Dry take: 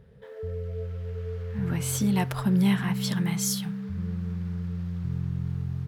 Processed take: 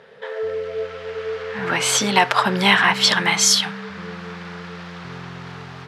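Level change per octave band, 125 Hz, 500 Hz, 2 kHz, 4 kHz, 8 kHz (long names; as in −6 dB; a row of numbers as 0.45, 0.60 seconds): −5.5, +12.5, +20.0, +18.5, +12.5 decibels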